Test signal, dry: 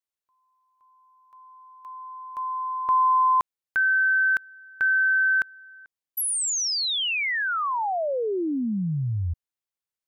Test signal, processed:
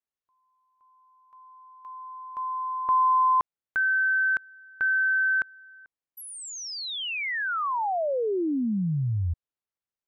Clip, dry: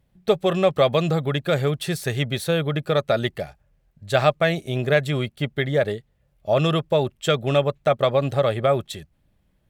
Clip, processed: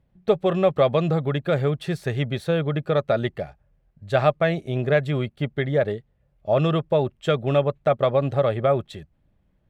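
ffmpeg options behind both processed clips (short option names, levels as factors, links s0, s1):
-af "lowpass=f=1700:p=1"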